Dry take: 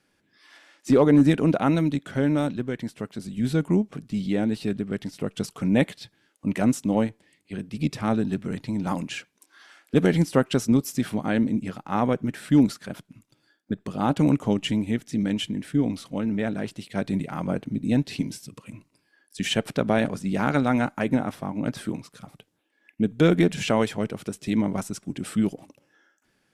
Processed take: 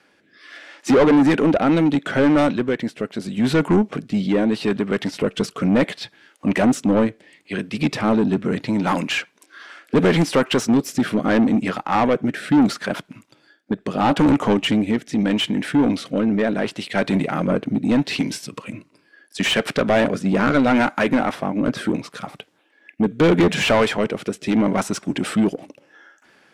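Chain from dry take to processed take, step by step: rotary cabinet horn 0.75 Hz; overdrive pedal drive 26 dB, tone 2 kHz, clips at -6.5 dBFS

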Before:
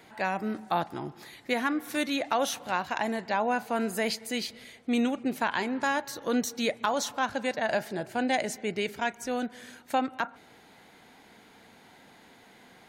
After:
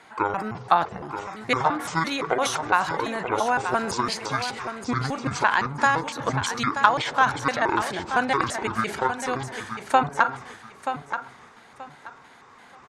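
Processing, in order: pitch shift switched off and on -10.5 st, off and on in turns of 170 ms; low-pass 10 kHz 24 dB/octave; treble shelf 5.1 kHz +8.5 dB; transient shaper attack +6 dB, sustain +10 dB; peaking EQ 1.2 kHz +12.5 dB 1.6 oct; on a send: feedback delay 930 ms, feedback 23%, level -9 dB; on the sum: trim -4 dB

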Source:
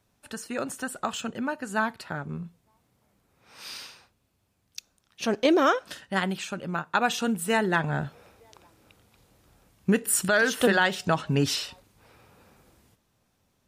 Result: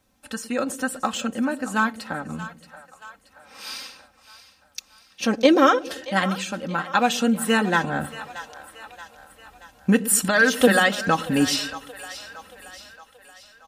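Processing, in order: comb 3.8 ms, depth 69%; on a send: two-band feedback delay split 560 Hz, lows 114 ms, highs 628 ms, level -14.5 dB; on the sum: trim +3 dB

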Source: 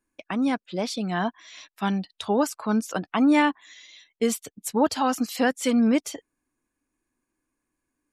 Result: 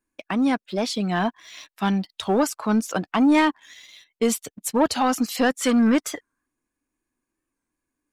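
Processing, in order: time-frequency box 5.59–6.46 s, 1–2 kHz +9 dB; waveshaping leveller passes 1; warped record 45 rpm, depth 100 cents

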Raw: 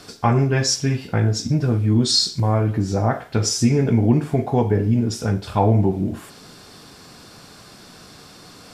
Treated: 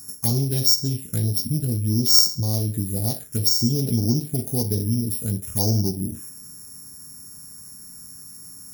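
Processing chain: sorted samples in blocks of 8 samples; FFT filter 200 Hz 0 dB, 1.2 kHz -10 dB, 3.6 kHz -5 dB, 7.3 kHz +15 dB; touch-sensitive phaser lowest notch 520 Hz, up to 2.7 kHz, full sweep at -9 dBFS; trim -4 dB

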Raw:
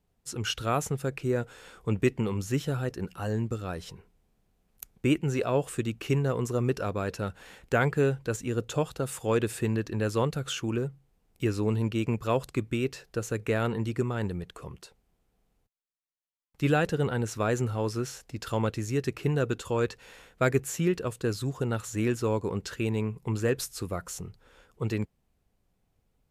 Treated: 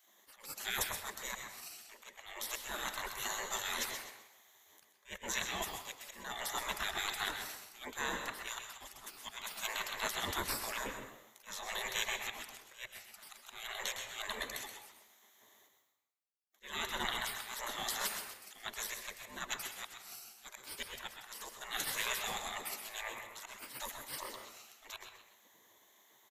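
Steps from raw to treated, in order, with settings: harmony voices -7 st -10 dB, -3 st -13 dB; rippled EQ curve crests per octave 1.1, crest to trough 15 dB; reverse; compression 5:1, threshold -31 dBFS, peak gain reduction 16 dB; reverse; slow attack 329 ms; spectral gate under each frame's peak -25 dB weak; frequency-shifting echo 128 ms, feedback 34%, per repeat +100 Hz, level -10 dB; on a send at -7 dB: reverberation RT60 0.60 s, pre-delay 105 ms; on the sum: trim +15 dB

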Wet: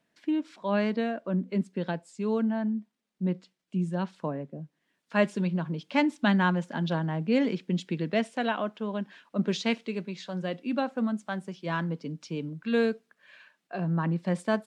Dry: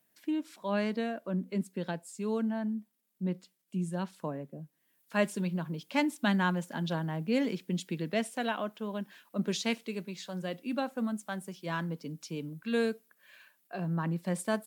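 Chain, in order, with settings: distance through air 110 m; trim +4.5 dB

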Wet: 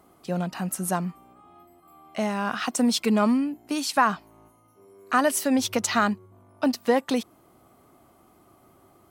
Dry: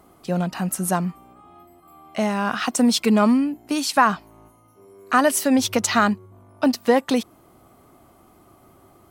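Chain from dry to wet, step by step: bass shelf 66 Hz -7 dB; trim -4 dB

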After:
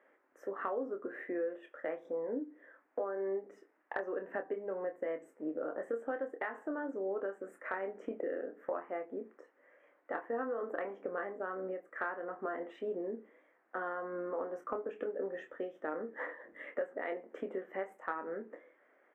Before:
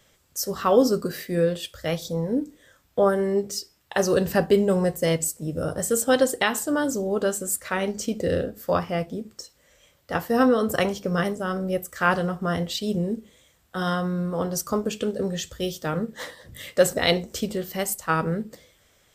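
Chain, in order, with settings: elliptic band-pass 290–1900 Hz, stop band 40 dB; compression 6:1, threshold -33 dBFS, peak gain reduction 19 dB; doubling 26 ms -7.5 dB; trim -2.5 dB

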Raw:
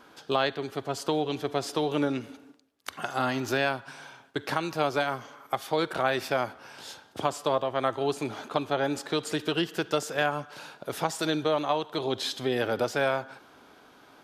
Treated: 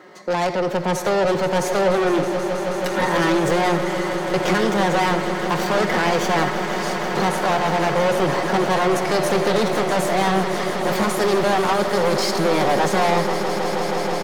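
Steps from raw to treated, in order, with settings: Bessel high-pass 160 Hz, order 6; tilt EQ -3 dB/octave; comb 7.1 ms, depth 45%; level rider gain up to 10 dB; in parallel at +1 dB: peak limiter -12 dBFS, peak gain reduction 10 dB; on the sum: pitch shift +4.5 st; saturation -17 dBFS, distortion -6 dB; echo with a slow build-up 160 ms, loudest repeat 8, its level -14 dB; on a send at -13.5 dB: reverberation RT60 0.50 s, pre-delay 40 ms

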